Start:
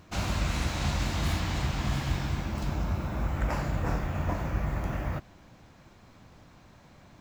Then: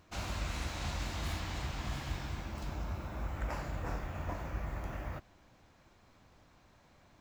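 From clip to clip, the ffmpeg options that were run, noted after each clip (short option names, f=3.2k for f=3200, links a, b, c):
-af "equalizer=f=160:w=0.91:g=-5.5,volume=-7dB"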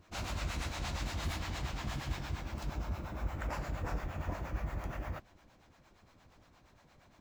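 -filter_complex "[0:a]acrossover=split=520[a][b];[a]aeval=exprs='val(0)*(1-0.7/2+0.7/2*cos(2*PI*8.6*n/s))':c=same[c];[b]aeval=exprs='val(0)*(1-0.7/2-0.7/2*cos(2*PI*8.6*n/s))':c=same[d];[c][d]amix=inputs=2:normalize=0,volume=3.5dB"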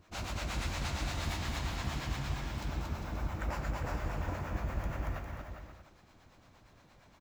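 -af "aecho=1:1:230|402.5|531.9|628.9|701.7:0.631|0.398|0.251|0.158|0.1"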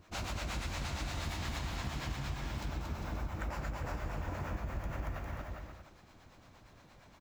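-af "acompressor=threshold=-36dB:ratio=6,volume=2dB"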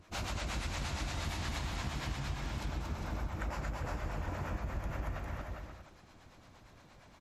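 -af "volume=1dB" -ar 44100 -c:a libmp3lame -b:a 56k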